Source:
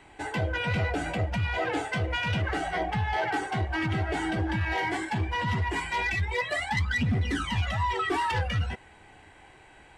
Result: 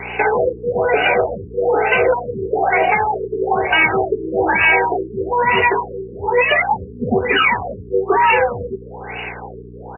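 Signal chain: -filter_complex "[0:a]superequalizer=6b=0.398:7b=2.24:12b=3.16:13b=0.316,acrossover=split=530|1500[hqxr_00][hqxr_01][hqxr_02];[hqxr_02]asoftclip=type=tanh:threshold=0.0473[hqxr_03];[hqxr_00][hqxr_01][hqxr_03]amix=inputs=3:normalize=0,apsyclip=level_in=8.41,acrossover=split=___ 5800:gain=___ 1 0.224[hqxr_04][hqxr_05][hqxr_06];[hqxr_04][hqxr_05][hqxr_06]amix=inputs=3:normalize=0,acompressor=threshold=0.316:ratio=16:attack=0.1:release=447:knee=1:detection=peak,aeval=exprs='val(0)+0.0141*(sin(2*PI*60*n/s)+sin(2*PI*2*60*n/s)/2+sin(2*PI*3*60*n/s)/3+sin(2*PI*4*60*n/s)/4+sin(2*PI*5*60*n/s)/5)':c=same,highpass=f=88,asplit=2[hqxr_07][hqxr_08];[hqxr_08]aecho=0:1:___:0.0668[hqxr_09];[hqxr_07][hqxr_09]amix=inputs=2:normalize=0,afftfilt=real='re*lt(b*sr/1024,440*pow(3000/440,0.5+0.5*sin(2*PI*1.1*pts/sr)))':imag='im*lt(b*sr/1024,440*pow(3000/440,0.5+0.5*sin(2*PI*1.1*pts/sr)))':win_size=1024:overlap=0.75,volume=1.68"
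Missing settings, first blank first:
320, 0.0631, 573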